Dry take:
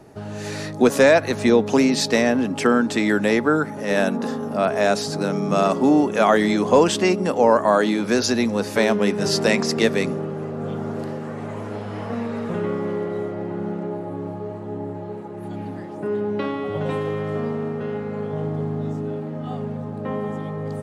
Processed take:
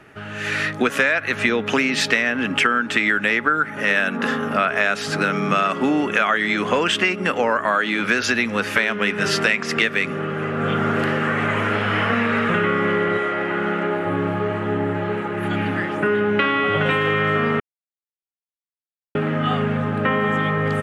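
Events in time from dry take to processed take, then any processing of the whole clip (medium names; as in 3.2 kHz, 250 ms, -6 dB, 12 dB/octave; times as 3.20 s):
13.17–14.05 s: high-pass 580 Hz -> 270 Hz 6 dB/octave
17.60–19.15 s: mute
whole clip: level rider; high-order bell 2 kHz +15 dB; compression, threshold -12 dBFS; trim -3.5 dB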